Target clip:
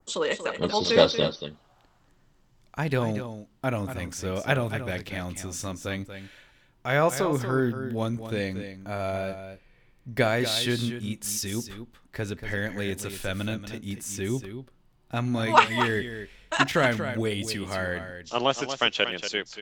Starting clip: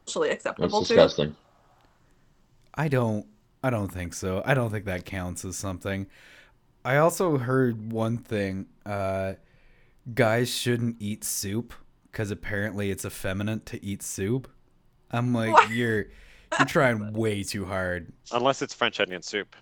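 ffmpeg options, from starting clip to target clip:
-filter_complex "[0:a]adynamicequalizer=threshold=0.00562:dfrequency=3500:dqfactor=1.1:tfrequency=3500:tqfactor=1.1:attack=5:release=100:ratio=0.375:range=3.5:mode=boostabove:tftype=bell,asplit=2[a][b];[b]aecho=0:1:235:0.316[c];[a][c]amix=inputs=2:normalize=0,volume=-2dB"

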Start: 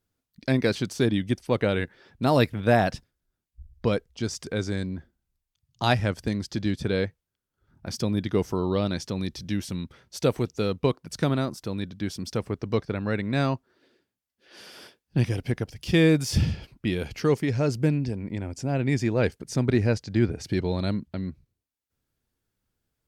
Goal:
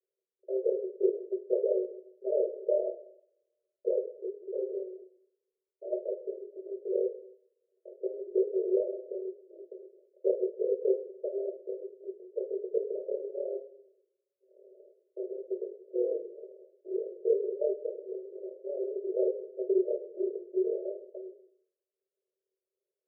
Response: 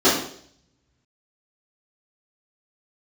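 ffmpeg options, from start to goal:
-filter_complex "[0:a]tremolo=f=38:d=0.889,asoftclip=type=tanh:threshold=-16.5dB,asuperpass=centerf=480:order=20:qfactor=1.8,asplit=2[a][b];[1:a]atrim=start_sample=2205[c];[b][c]afir=irnorm=-1:irlink=0,volume=-26dB[d];[a][d]amix=inputs=2:normalize=0"

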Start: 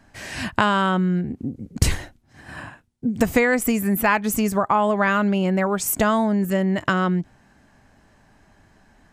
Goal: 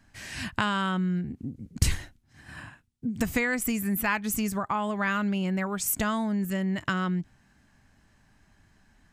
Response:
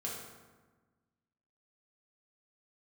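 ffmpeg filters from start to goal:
-af "equalizer=f=560:w=0.65:g=-9,volume=-4dB"

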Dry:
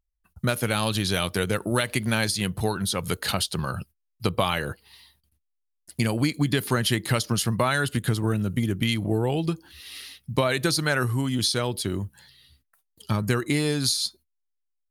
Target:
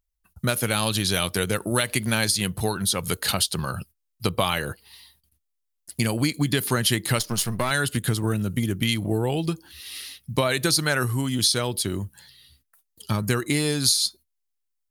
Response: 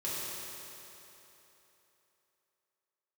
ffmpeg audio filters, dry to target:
-filter_complex "[0:a]asettb=1/sr,asplit=3[a][b][c];[a]atrim=end=7.194[d];[b]atrim=start=7.19:end=7.71,asetpts=PTS-STARTPTS,afade=t=in:d=0.004:c=qsin,afade=t=out:st=0.516:d=0.004:c=qsin,aeval=exprs='if(lt(val(0),0),0.447*val(0),val(0))':c=same[e];[c]atrim=start=7.706[f];[d][e]acrossfade=d=0.004:c1=hsin:c2=qsin[g];[g][f]acrossfade=d=0.004:c1=qsin:c2=hsin,highshelf=f=4.5k:g=7"

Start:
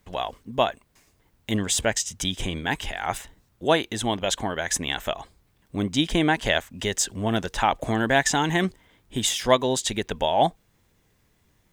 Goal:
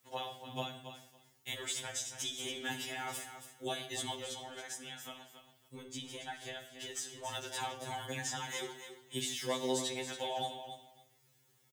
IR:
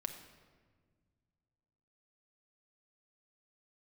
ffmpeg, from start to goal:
-filter_complex "[0:a]highpass=89,highshelf=f=3.8k:g=10.5,asettb=1/sr,asplit=3[a][b][c];[a]atrim=end=4.204[d];[b]atrim=start=4.2:end=6.96,asetpts=PTS-STARTPTS,afade=t=in:d=0.004:c=qsin,afade=t=out:st=2.756:d=0.004:c=qsin,acompressor=threshold=-36dB:ratio=3[e];[c]atrim=start=6.956[f];[d][e]acrossfade=d=0.004:c1=hsin:c2=qsin[g];[g][f]acrossfade=d=0.004:c1=qsin:c2=hsin,alimiter=limit=-9.5dB:level=0:latency=1:release=416,acrossover=split=170|510|3300[h][i][j][k];[h]acompressor=threshold=-47dB:ratio=4[l];[i]acompressor=threshold=-35dB:ratio=4[m];[j]acompressor=threshold=-31dB:ratio=4[n];[k]acompressor=threshold=-31dB:ratio=4[o];[l][m][n][o]amix=inputs=4:normalize=0,aecho=1:1:278|556:0.316|0.0506[p];[1:a]atrim=start_sample=2205,afade=t=out:st=0.23:d=0.01,atrim=end_sample=10584[q];[p][q]afir=irnorm=-1:irlink=0,afftfilt=real='re*2.45*eq(mod(b,6),0)':imag='im*2.45*eq(mod(b,6),0)':win_size=2048:overlap=0.75,volume=-5dB"

